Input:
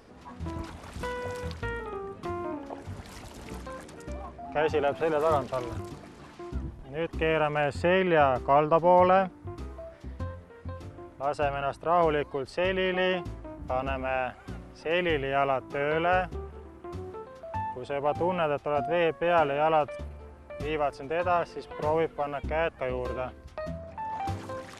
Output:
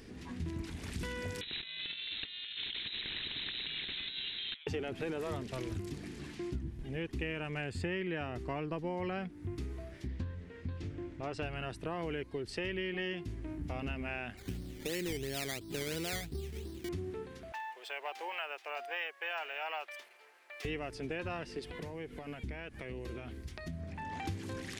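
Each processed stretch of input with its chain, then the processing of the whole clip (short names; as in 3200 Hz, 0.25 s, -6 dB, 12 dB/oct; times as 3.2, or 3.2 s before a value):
1.41–4.67 negative-ratio compressor -40 dBFS, ratio -0.5 + inverted band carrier 3900 Hz + spectral compressor 2:1
10.07–11.43 LPF 6400 Hz + Doppler distortion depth 0.16 ms
14.37–16.89 high shelf 2100 Hz -10.5 dB + decimation with a swept rate 13×, swing 60% 2.9 Hz
17.52–20.65 HPF 690 Hz 24 dB/oct + decimation joined by straight lines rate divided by 2×
21.59–23.81 high shelf 8200 Hz +5 dB + notch 2700 Hz, Q 27 + compressor 5:1, threshold -38 dBFS
whole clip: band shelf 840 Hz -12.5 dB; compressor 4:1, threshold -40 dBFS; gain +4 dB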